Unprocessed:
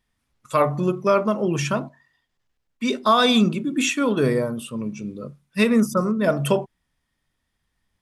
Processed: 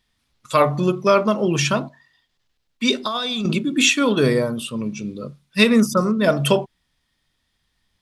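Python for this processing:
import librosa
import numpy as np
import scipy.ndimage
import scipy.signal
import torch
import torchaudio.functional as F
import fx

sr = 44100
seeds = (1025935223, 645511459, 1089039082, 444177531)

y = fx.peak_eq(x, sr, hz=4000.0, db=8.5, octaves=1.2)
y = fx.over_compress(y, sr, threshold_db=-22.0, ratio=-1.0, at=(2.98, 3.57), fade=0.02)
y = y * 10.0 ** (2.5 / 20.0)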